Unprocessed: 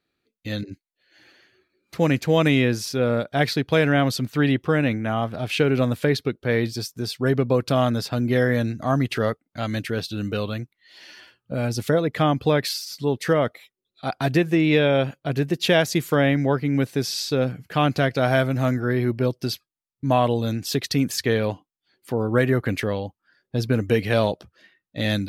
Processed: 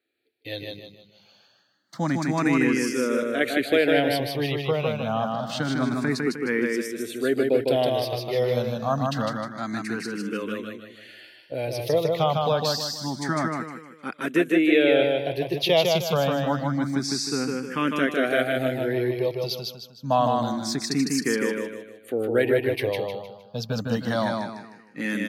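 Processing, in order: high-pass 190 Hz 12 dB/octave; on a send: feedback delay 154 ms, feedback 39%, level -3 dB; on the sum: barber-pole phaser +0.27 Hz

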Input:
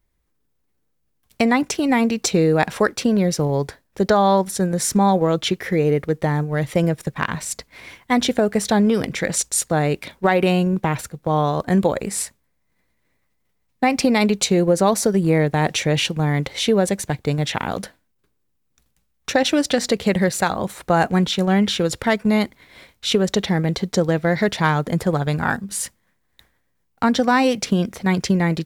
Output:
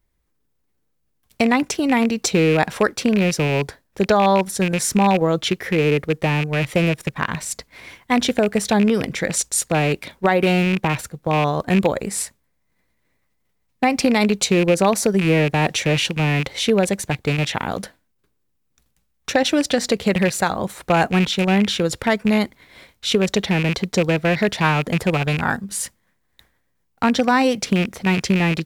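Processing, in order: rattle on loud lows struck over -22 dBFS, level -14 dBFS

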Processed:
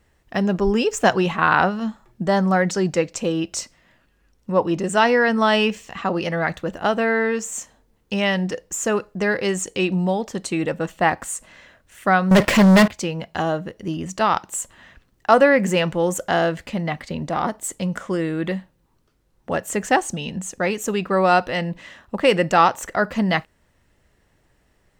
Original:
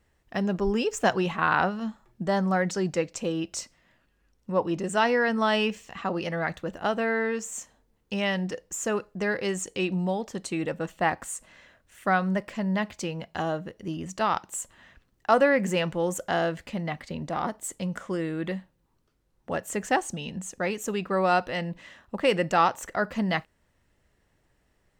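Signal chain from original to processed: 12.31–12.88 s: waveshaping leveller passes 5; trim +6.5 dB

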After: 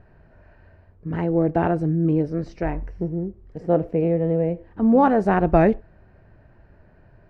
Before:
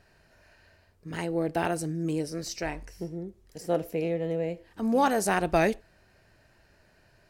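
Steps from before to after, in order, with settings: low-pass 1.4 kHz 12 dB/octave; bass shelf 270 Hz +8 dB; trim +5.5 dB

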